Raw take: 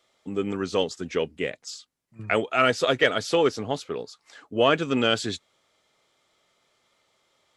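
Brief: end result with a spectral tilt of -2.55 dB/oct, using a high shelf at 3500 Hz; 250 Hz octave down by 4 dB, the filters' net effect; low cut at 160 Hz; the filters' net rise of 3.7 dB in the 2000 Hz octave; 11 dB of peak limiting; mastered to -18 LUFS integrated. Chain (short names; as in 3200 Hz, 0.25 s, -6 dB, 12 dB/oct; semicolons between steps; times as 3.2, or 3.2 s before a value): HPF 160 Hz; bell 250 Hz -4.5 dB; bell 2000 Hz +3.5 dB; high shelf 3500 Hz +4.5 dB; gain +11.5 dB; limiter -4.5 dBFS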